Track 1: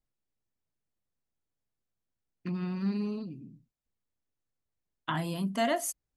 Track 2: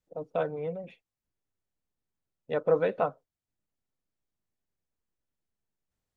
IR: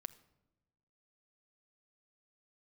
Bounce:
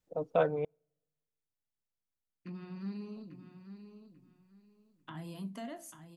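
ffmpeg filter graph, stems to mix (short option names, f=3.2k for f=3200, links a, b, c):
-filter_complex "[0:a]flanger=delay=8:depth=6.3:regen=-74:speed=0.76:shape=triangular,acrossover=split=380[a][b];[b]acompressor=threshold=-43dB:ratio=3[c];[a][c]amix=inputs=2:normalize=0,volume=-7dB,asplit=3[d][e][f];[e]volume=-9.5dB[g];[f]volume=-8dB[h];[1:a]volume=1.5dB,asplit=3[i][j][k];[i]atrim=end=0.65,asetpts=PTS-STARTPTS,afade=t=out:st=0.646:d=0.004:c=hsin[l];[j]atrim=start=0.65:end=3.16,asetpts=PTS-STARTPTS,volume=0[m];[k]atrim=start=3.16,asetpts=PTS-STARTPTS,afade=t=in:d=0.004:c=hsin[n];[l][m][n]concat=n=3:v=0:a=1,asplit=2[o][p];[p]volume=-21.5dB[q];[2:a]atrim=start_sample=2205[r];[g][q]amix=inputs=2:normalize=0[s];[s][r]afir=irnorm=-1:irlink=0[t];[h]aecho=0:1:842|1684|2526|3368:1|0.23|0.0529|0.0122[u];[d][o][t][u]amix=inputs=4:normalize=0"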